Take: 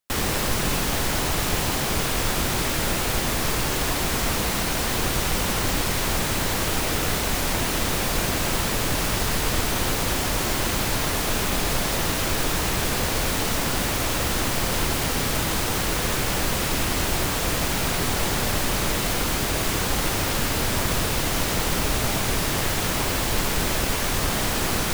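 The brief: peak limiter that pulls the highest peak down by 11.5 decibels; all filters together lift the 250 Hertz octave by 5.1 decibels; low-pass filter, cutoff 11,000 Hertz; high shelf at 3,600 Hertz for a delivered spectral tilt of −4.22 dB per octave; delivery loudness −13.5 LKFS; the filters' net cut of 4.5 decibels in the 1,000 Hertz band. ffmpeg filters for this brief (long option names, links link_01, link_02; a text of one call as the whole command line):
ffmpeg -i in.wav -af "lowpass=11000,equalizer=frequency=250:width_type=o:gain=7,equalizer=frequency=1000:width_type=o:gain=-6,highshelf=frequency=3600:gain=-4.5,volume=17dB,alimiter=limit=-4dB:level=0:latency=1" out.wav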